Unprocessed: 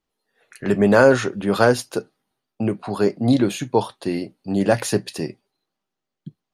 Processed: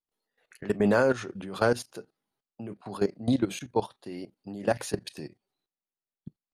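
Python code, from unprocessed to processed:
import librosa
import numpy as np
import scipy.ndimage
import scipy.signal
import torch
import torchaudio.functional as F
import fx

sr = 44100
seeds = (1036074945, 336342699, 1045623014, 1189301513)

y = fx.level_steps(x, sr, step_db=16)
y = fx.vibrato(y, sr, rate_hz=0.52, depth_cents=59.0)
y = y * 10.0 ** (-5.5 / 20.0)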